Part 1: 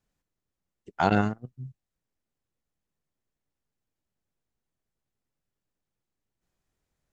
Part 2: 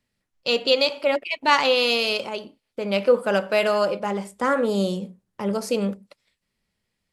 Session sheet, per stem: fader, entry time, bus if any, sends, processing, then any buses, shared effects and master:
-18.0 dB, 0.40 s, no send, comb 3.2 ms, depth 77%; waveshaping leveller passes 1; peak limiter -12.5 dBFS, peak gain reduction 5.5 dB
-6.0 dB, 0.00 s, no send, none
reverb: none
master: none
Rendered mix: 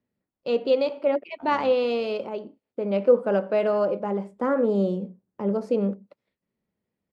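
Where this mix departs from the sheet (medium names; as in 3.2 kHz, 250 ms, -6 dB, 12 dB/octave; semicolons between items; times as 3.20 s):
stem 2 -6.0 dB -> +1.5 dB; master: extra band-pass filter 320 Hz, Q 0.7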